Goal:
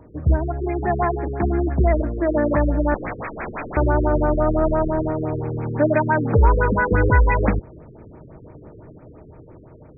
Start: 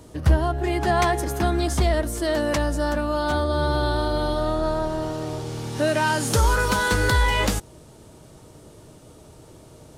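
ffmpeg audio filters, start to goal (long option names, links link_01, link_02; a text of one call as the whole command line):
ffmpeg -i in.wav -filter_complex "[0:a]asettb=1/sr,asplit=3[link_01][link_02][link_03];[link_01]atrim=end=2.944[link_04];[link_02]atrim=start=2.94:end=3.77,asetpts=PTS-STARTPTS,afade=type=in:duration=0.004:curve=qsin,afade=type=out:start_time=0.826:duration=0.004:curve=qsin,aeval=exprs='(mod(18.8*val(0)+1,2)-1)/18.8':channel_layout=same[link_05];[link_03]atrim=start=3.766[link_06];[link_04][link_05]acrossfade=duration=0.004:curve1=hsin:curve2=qsin[link_07];[link_07][link_06]acrossfade=duration=0.004:curve1=qsin:curve2=hsin,dynaudnorm=framelen=710:gausssize=5:maxgain=7dB,afftfilt=real='re*lt(b*sr/1024,470*pow(2600/470,0.5+0.5*sin(2*PI*5.9*pts/sr)))':imag='im*lt(b*sr/1024,470*pow(2600/470,0.5+0.5*sin(2*PI*5.9*pts/sr)))':win_size=1024:overlap=0.75" out.wav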